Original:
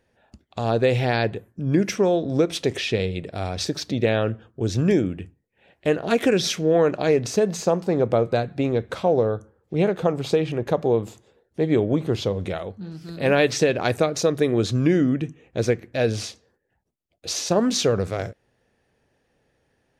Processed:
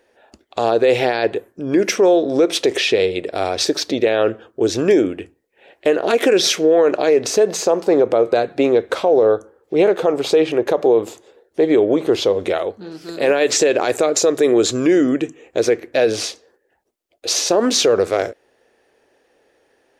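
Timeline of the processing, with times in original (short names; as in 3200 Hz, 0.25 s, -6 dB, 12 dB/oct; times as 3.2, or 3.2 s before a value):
13.09–15.6 bell 7300 Hz +11.5 dB 0.22 oct
whole clip: resonant low shelf 240 Hz -14 dB, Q 1.5; limiter -14.5 dBFS; gain +8.5 dB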